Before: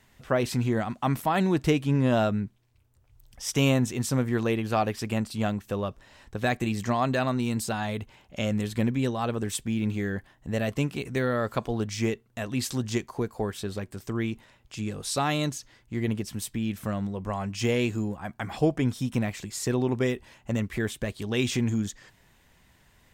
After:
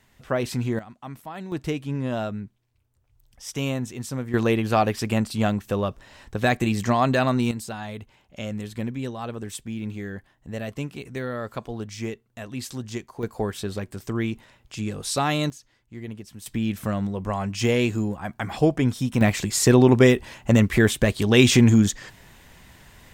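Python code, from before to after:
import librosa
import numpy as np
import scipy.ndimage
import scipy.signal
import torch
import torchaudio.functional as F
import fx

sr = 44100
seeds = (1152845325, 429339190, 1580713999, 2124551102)

y = fx.gain(x, sr, db=fx.steps((0.0, 0.0), (0.79, -12.0), (1.52, -4.5), (4.34, 5.0), (7.51, -4.0), (13.23, 3.0), (15.5, -8.0), (16.46, 4.0), (19.21, 11.0)))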